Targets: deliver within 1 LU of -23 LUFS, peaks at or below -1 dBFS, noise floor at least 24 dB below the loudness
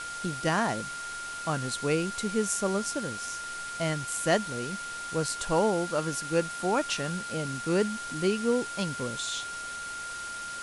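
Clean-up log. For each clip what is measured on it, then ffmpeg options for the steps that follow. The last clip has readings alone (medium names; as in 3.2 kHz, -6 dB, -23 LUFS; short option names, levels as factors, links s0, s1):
steady tone 1.4 kHz; tone level -36 dBFS; noise floor -38 dBFS; noise floor target -54 dBFS; loudness -30.0 LUFS; peak level -11.0 dBFS; loudness target -23.0 LUFS
-> -af "bandreject=f=1400:w=30"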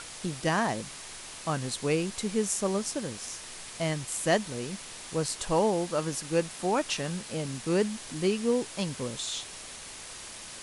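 steady tone not found; noise floor -44 dBFS; noise floor target -55 dBFS
-> -af "afftdn=nr=11:nf=-44"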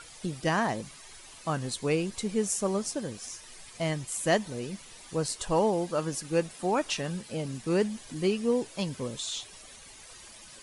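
noise floor -50 dBFS; noise floor target -55 dBFS
-> -af "afftdn=nr=6:nf=-50"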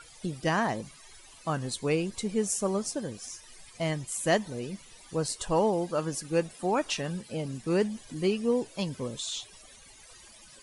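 noise floor -53 dBFS; noise floor target -55 dBFS
-> -af "afftdn=nr=6:nf=-53"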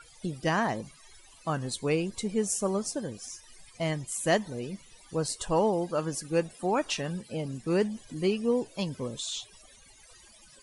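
noise floor -56 dBFS; loudness -30.5 LUFS; peak level -11.0 dBFS; loudness target -23.0 LUFS
-> -af "volume=2.37"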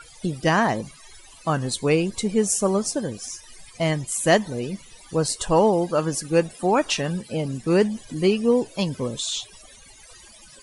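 loudness -23.0 LUFS; peak level -3.5 dBFS; noise floor -48 dBFS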